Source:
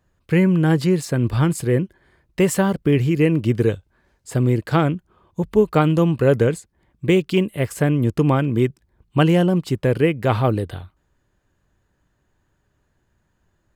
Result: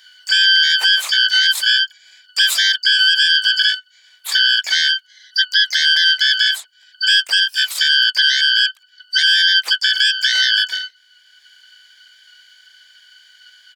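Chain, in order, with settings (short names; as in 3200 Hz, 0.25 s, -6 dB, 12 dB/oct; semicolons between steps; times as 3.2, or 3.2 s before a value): four-band scrambler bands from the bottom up 3412; HPF 1400 Hz 12 dB/oct; limiter -12.5 dBFS, peak gain reduction 10.5 dB; harmoniser -12 st -2 dB, +7 st -5 dB; three-band squash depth 40%; gain +4 dB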